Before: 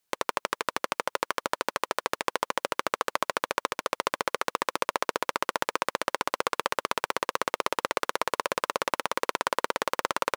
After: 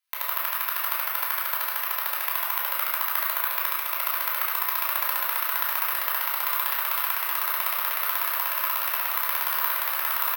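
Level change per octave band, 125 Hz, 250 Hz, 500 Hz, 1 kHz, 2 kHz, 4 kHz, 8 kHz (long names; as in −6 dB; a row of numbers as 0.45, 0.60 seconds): below −40 dB, below −35 dB, −11.5 dB, −0.5 dB, +2.0 dB, +0.5 dB, +2.0 dB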